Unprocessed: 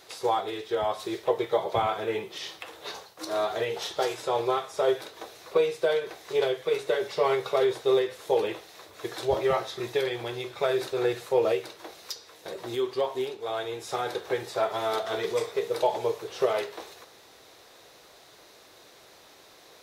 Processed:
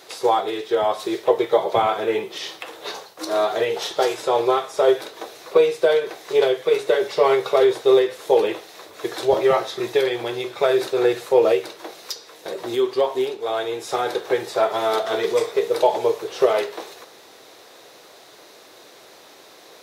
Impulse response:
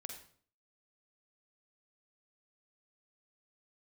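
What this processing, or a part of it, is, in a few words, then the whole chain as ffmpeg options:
filter by subtraction: -filter_complex "[0:a]asplit=2[link_01][link_02];[link_02]lowpass=320,volume=-1[link_03];[link_01][link_03]amix=inputs=2:normalize=0,volume=6dB"

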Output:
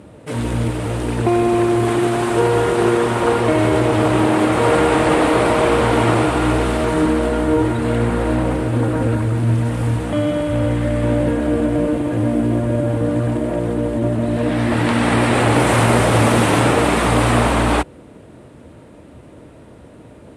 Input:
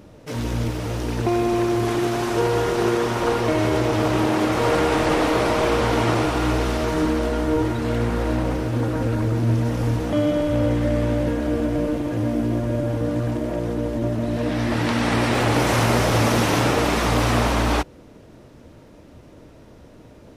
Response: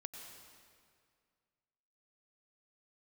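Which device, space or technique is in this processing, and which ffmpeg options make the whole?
budget condenser microphone: -filter_complex "[0:a]highpass=61,highshelf=frequency=7200:width_type=q:width=3:gain=9,asettb=1/sr,asplit=3[link_01][link_02][link_03];[link_01]atrim=end=9.174[link_04];[link_02]atrim=start=9.17:end=11.04,asetpts=PTS-STARTPTS,afade=type=in:duration=0.004:curve=qsin,afade=type=out:start_time=1.866:duration=0.004:curve=qsin,equalizer=frequency=400:width=0.6:gain=-4.5[link_05];[link_03]atrim=start=11.036[link_06];[link_04][link_05]acrossfade=duration=0.004:curve1=hsin:curve2=qsin[link_07];[link_07][link_06]acrossfade=duration=0.004:curve1=qsin:curve2=hsin,lowpass=5400,volume=5dB"

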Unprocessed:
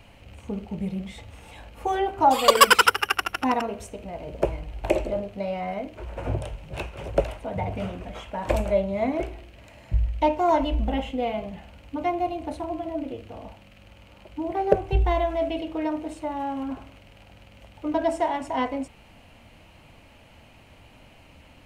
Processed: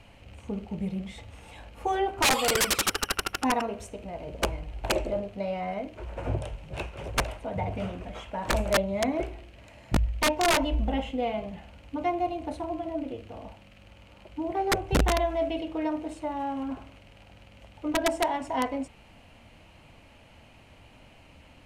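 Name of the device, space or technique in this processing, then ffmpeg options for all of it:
overflowing digital effects unit: -af "aeval=exprs='(mod(5.01*val(0)+1,2)-1)/5.01':channel_layout=same,lowpass=12000,volume=-2dB"

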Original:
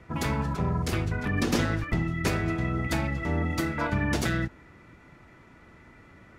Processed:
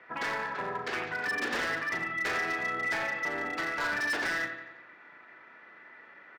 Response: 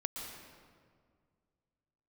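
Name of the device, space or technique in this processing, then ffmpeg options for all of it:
megaphone: -filter_complex "[0:a]highpass=530,lowpass=3800,lowpass=5500,equalizer=frequency=1700:width_type=o:width=0.43:gain=9,aecho=1:1:89|178|267|356|445|534:0.335|0.174|0.0906|0.0471|0.0245|0.0127,bandreject=frequency=337:width_type=h:width=4,bandreject=frequency=674:width_type=h:width=4,bandreject=frequency=1011:width_type=h:width=4,bandreject=frequency=1348:width_type=h:width=4,bandreject=frequency=1685:width_type=h:width=4,bandreject=frequency=2022:width_type=h:width=4,bandreject=frequency=2359:width_type=h:width=4,bandreject=frequency=2696:width_type=h:width=4,bandreject=frequency=3033:width_type=h:width=4,bandreject=frequency=3370:width_type=h:width=4,bandreject=frequency=3707:width_type=h:width=4,bandreject=frequency=4044:width_type=h:width=4,bandreject=frequency=4381:width_type=h:width=4,bandreject=frequency=4718:width_type=h:width=4,bandreject=frequency=5055:width_type=h:width=4,bandreject=frequency=5392:width_type=h:width=4,bandreject=frequency=5729:width_type=h:width=4,bandreject=frequency=6066:width_type=h:width=4,bandreject=frequency=6403:width_type=h:width=4,bandreject=frequency=6740:width_type=h:width=4,bandreject=frequency=7077:width_type=h:width=4,bandreject=frequency=7414:width_type=h:width=4,bandreject=frequency=7751:width_type=h:width=4,bandreject=frequency=8088:width_type=h:width=4,bandreject=frequency=8425:width_type=h:width=4,bandreject=frequency=8762:width_type=h:width=4,bandreject=frequency=9099:width_type=h:width=4,bandreject=frequency=9436:width_type=h:width=4,bandreject=frequency=9773:width_type=h:width=4,bandreject=frequency=10110:width_type=h:width=4,bandreject=frequency=10447:width_type=h:width=4,bandreject=frequency=10784:width_type=h:width=4,bandreject=frequency=11121:width_type=h:width=4,bandreject=frequency=11458:width_type=h:width=4,bandreject=frequency=11795:width_type=h:width=4,bandreject=frequency=12132:width_type=h:width=4,bandreject=frequency=12469:width_type=h:width=4,bandreject=frequency=12806:width_type=h:width=4,bandreject=frequency=13143:width_type=h:width=4,bandreject=frequency=13480:width_type=h:width=4,asoftclip=type=hard:threshold=-28dB,asplit=2[link_01][link_02];[link_02]adelay=38,volume=-10dB[link_03];[link_01][link_03]amix=inputs=2:normalize=0"

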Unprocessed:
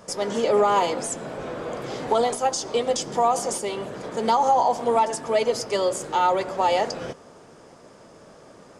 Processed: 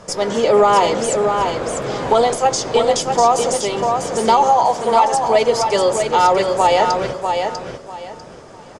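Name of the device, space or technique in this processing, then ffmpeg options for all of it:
low shelf boost with a cut just above: -filter_complex "[0:a]lowpass=9300,asettb=1/sr,asplit=3[link_01][link_02][link_03];[link_01]atrim=end=4.444[link_04];[link_02]atrim=start=4.44:end=5.12,asetpts=PTS-STARTPTS,afade=type=in:duration=0.004:curve=qsin,afade=type=out:start_time=0.676:duration=0.004:curve=qsin,lowshelf=frequency=300:gain=-12[link_05];[link_03]atrim=start=5.116[link_06];[link_04][link_05]acrossfade=duration=0.004:curve1=hsin:curve2=qsin[link_07];[link_07][link_06]acrossfade=duration=0.004:curve1=qsin:curve2=hsin,lowshelf=frequency=82:gain=7.5,equalizer=frequency=250:width_type=o:width=0.77:gain=-3,aecho=1:1:646|1292|1938:0.531|0.127|0.0306,volume=7dB"

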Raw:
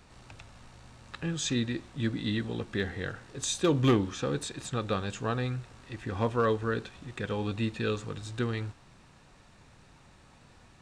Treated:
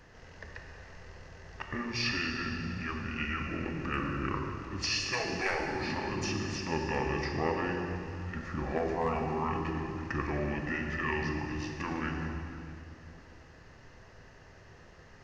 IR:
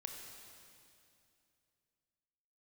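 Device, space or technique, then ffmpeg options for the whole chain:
slowed and reverbed: -filter_complex "[0:a]asetrate=31311,aresample=44100[link_01];[1:a]atrim=start_sample=2205[link_02];[link_01][link_02]afir=irnorm=-1:irlink=0,afftfilt=real='re*lt(hypot(re,im),0.126)':imag='im*lt(hypot(re,im),0.126)':win_size=1024:overlap=0.75,superequalizer=7b=1.58:11b=2:13b=0.562,volume=4.5dB"

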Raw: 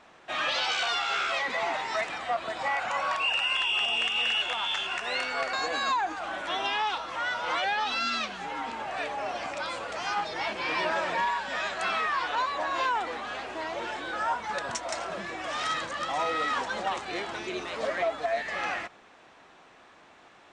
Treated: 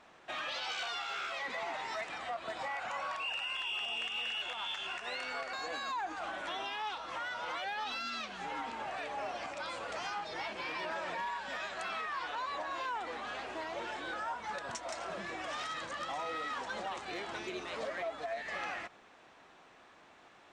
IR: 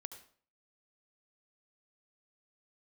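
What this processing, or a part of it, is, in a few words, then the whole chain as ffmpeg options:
limiter into clipper: -af "alimiter=level_in=1.5dB:limit=-24dB:level=0:latency=1:release=191,volume=-1.5dB,asoftclip=type=hard:threshold=-26.5dB,volume=-4.5dB"

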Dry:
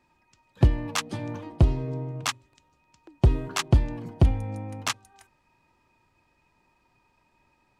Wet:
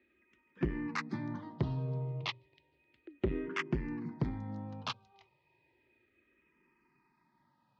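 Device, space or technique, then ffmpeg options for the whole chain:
barber-pole phaser into a guitar amplifier: -filter_complex "[0:a]asplit=2[link_01][link_02];[link_02]afreqshift=-0.33[link_03];[link_01][link_03]amix=inputs=2:normalize=1,asoftclip=type=tanh:threshold=-22dB,highpass=75,equalizer=frequency=89:width_type=q:width=4:gain=-7,equalizer=frequency=150:width_type=q:width=4:gain=5,equalizer=frequency=230:width_type=q:width=4:gain=4,equalizer=frequency=370:width_type=q:width=4:gain=7,equalizer=frequency=730:width_type=q:width=4:gain=-5,equalizer=frequency=2000:width_type=q:width=4:gain=7,lowpass=frequency=4400:width=0.5412,lowpass=frequency=4400:width=1.3066,volume=-4dB"

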